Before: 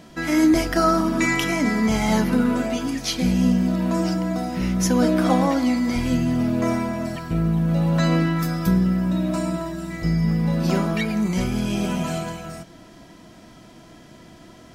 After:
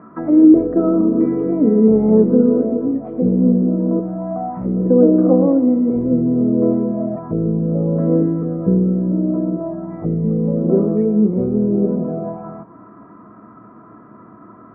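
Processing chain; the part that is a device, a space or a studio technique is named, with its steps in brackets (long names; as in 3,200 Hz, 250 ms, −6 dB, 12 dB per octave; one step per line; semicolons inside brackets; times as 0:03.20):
0:03.99–0:04.65: drawn EQ curve 110 Hz 0 dB, 430 Hz −12 dB, 770 Hz 0 dB
envelope filter bass rig (envelope-controlled low-pass 480–1,300 Hz down, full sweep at −20.5 dBFS; loudspeaker in its box 63–2,200 Hz, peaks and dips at 74 Hz −10 dB, 110 Hz +8 dB, 210 Hz +9 dB, 290 Hz +7 dB, 420 Hz +9 dB, 1,200 Hz +9 dB)
level −3.5 dB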